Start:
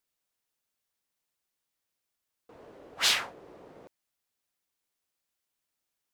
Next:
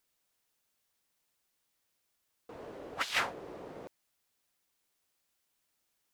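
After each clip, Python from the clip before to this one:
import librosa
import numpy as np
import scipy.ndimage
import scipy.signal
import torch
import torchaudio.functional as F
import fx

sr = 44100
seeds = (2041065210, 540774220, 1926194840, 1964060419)

y = fx.over_compress(x, sr, threshold_db=-31.0, ratio=-0.5)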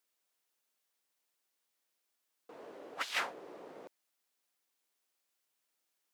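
y = scipy.signal.sosfilt(scipy.signal.butter(2, 260.0, 'highpass', fs=sr, output='sos'), x)
y = y * 10.0 ** (-3.5 / 20.0)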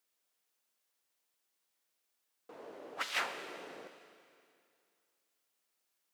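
y = fx.rev_schroeder(x, sr, rt60_s=2.4, comb_ms=30, drr_db=8.0)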